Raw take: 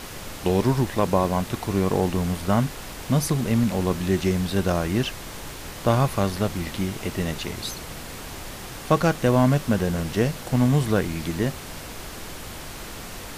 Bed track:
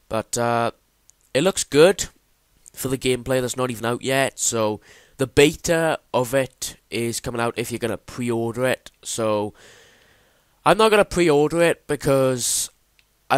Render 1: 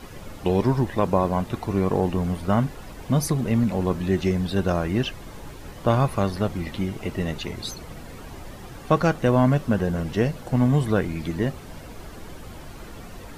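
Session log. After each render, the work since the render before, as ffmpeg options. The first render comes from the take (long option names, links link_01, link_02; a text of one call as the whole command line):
ffmpeg -i in.wav -af "afftdn=noise_reduction=11:noise_floor=-37" out.wav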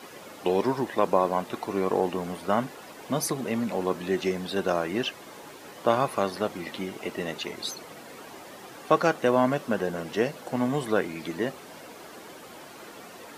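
ffmpeg -i in.wav -af "highpass=320" out.wav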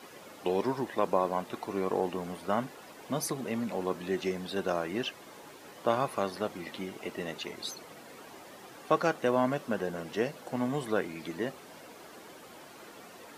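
ffmpeg -i in.wav -af "volume=-5dB" out.wav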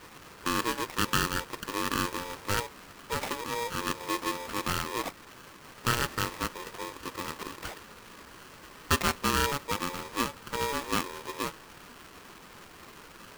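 ffmpeg -i in.wav -af "acrusher=samples=14:mix=1:aa=0.000001,aeval=exprs='val(0)*sgn(sin(2*PI*710*n/s))':channel_layout=same" out.wav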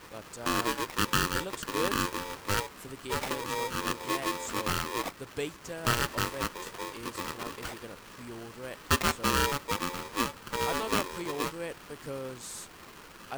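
ffmpeg -i in.wav -i bed.wav -filter_complex "[1:a]volume=-20.5dB[link_01];[0:a][link_01]amix=inputs=2:normalize=0" out.wav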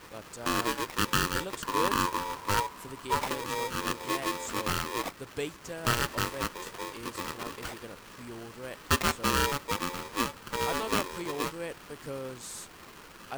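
ffmpeg -i in.wav -filter_complex "[0:a]asettb=1/sr,asplit=3[link_01][link_02][link_03];[link_01]atrim=end=1.624[link_04];[link_02]atrim=start=1.62:end=3.28,asetpts=PTS-STARTPTS,afade=type=in:duration=0.004:curve=qsin,afade=type=out:start_time=1.656:duration=0.004:curve=qsin,equalizer=frequency=990:width=6:gain=11.5[link_05];[link_03]atrim=start=3.276[link_06];[link_04][link_05]acrossfade=duration=0.004:curve1=hsin:curve2=qsin[link_07];[link_07][link_06]acrossfade=duration=0.004:curve1=qsin:curve2=hsin" out.wav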